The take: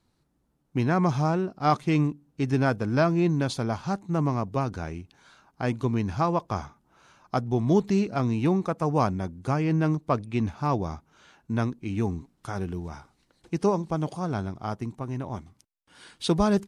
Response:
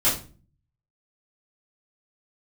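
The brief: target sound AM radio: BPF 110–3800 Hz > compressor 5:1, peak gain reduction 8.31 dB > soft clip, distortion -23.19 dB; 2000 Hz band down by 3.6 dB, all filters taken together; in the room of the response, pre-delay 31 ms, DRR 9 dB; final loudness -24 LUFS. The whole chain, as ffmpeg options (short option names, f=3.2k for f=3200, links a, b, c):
-filter_complex "[0:a]equalizer=f=2k:t=o:g=-5,asplit=2[a][b];[1:a]atrim=start_sample=2205,adelay=31[c];[b][c]afir=irnorm=-1:irlink=0,volume=-23dB[d];[a][d]amix=inputs=2:normalize=0,highpass=110,lowpass=3.8k,acompressor=threshold=-24dB:ratio=5,asoftclip=threshold=-17dB,volume=7.5dB"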